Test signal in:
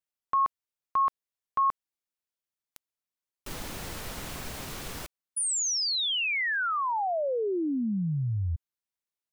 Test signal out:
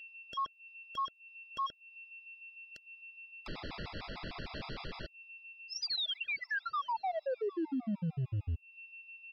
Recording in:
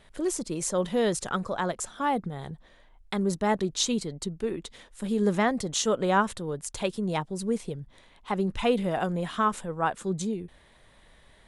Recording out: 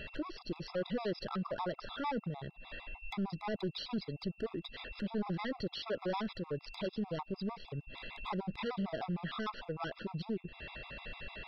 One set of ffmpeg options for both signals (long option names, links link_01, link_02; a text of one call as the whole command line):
ffmpeg -i in.wav -af "aeval=exprs='val(0)+0.00158*sin(2*PI*2700*n/s)':channel_layout=same,aresample=11025,volume=27.5dB,asoftclip=hard,volume=-27.5dB,aresample=44100,acompressor=threshold=-46dB:ratio=6:attack=0.22:release=200:knee=1:detection=rms,afftfilt=real='re*gt(sin(2*PI*6.6*pts/sr)*(1-2*mod(floor(b*sr/1024/670),2)),0)':imag='im*gt(sin(2*PI*6.6*pts/sr)*(1-2*mod(floor(b*sr/1024/670),2)),0)':win_size=1024:overlap=0.75,volume=12.5dB" out.wav